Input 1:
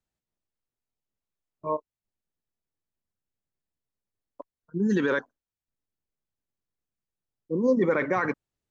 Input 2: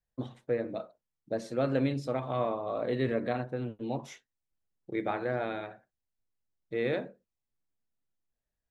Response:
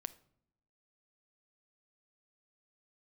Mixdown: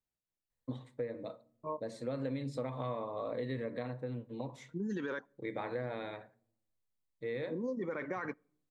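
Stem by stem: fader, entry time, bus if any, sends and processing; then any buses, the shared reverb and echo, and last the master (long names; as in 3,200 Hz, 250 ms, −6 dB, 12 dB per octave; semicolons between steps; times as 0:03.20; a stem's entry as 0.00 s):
−9.0 dB, 0.00 s, send −15 dB, no processing
−3.0 dB, 0.50 s, send −5.5 dB, EQ curve with evenly spaced ripples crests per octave 1, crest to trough 7 dB; automatic ducking −12 dB, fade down 1.75 s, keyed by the first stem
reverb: on, pre-delay 6 ms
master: downward compressor 6 to 1, threshold −34 dBFS, peak gain reduction 11 dB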